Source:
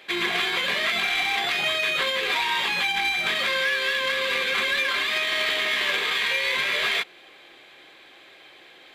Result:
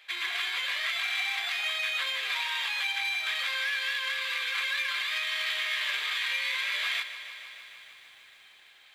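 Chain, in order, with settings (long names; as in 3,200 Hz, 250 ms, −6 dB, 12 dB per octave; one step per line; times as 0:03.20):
high-pass filter 1,200 Hz 12 dB per octave
feedback echo at a low word length 152 ms, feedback 80%, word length 9 bits, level −13 dB
level −6 dB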